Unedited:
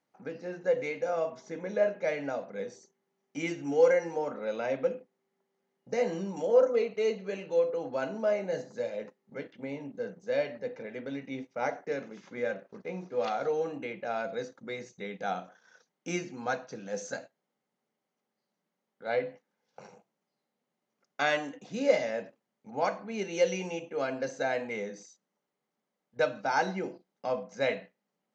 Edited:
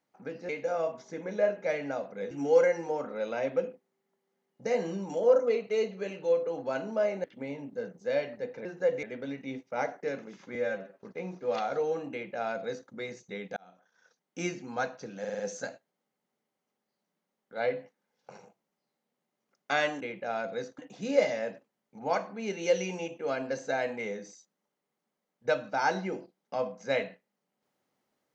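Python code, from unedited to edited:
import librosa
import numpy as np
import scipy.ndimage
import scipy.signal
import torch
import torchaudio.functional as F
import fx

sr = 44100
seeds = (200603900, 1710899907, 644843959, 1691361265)

y = fx.edit(x, sr, fx.move(start_s=0.49, length_s=0.38, to_s=10.87),
    fx.cut(start_s=2.69, length_s=0.89),
    fx.cut(start_s=8.51, length_s=0.95),
    fx.stretch_span(start_s=12.39, length_s=0.29, factor=1.5),
    fx.duplicate(start_s=13.81, length_s=0.78, to_s=21.5),
    fx.fade_in_span(start_s=15.26, length_s=0.9),
    fx.stutter(start_s=16.89, slice_s=0.05, count=5), tone=tone)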